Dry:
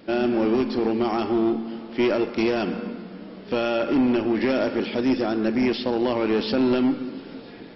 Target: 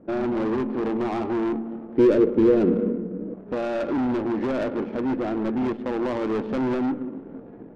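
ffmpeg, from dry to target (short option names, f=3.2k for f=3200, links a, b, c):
-filter_complex "[0:a]lowpass=1.6k,volume=21.5dB,asoftclip=hard,volume=-21.5dB,adynamicsmooth=sensitivity=2.5:basefreq=670,asettb=1/sr,asplit=3[a][b][c];[a]atrim=end=1.974[d];[b]atrim=start=1.97:end=3.34,asetpts=PTS-STARTPTS,afade=t=in:d=0.004:c=qsin,afade=t=out:st=1.366:d=0.004:c=qsin,lowshelf=f=580:t=q:w=3:g=6[e];[c]atrim=start=3.336[f];[d][e]acrossfade=d=0.004:c1=hsin:c2=qsin[g];[g][f]acrossfade=d=0.004:c1=qsin:c2=hsin"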